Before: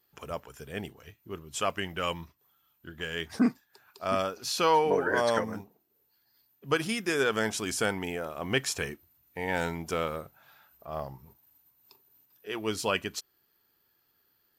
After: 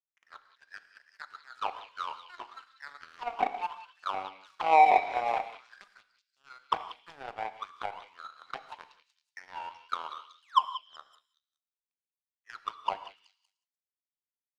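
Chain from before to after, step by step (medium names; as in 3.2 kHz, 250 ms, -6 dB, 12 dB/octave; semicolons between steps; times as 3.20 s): spectral peaks clipped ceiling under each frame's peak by 13 dB; high-pass 130 Hz 6 dB/octave; ever faster or slower copies 114 ms, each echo +7 st, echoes 3, each echo -6 dB; painted sound fall, 10.42–10.66 s, 550–3300 Hz -30 dBFS; flange 0.3 Hz, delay 9.5 ms, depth 3.1 ms, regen +75%; auto-wah 760–2100 Hz, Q 17, down, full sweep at -28.5 dBFS; power-law waveshaper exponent 2; repeats whose band climbs or falls 188 ms, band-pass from 3.4 kHz, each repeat 0.7 oct, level -8 dB; gated-style reverb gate 200 ms flat, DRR 11.5 dB; loudness maximiser +33.5 dB; trim -7.5 dB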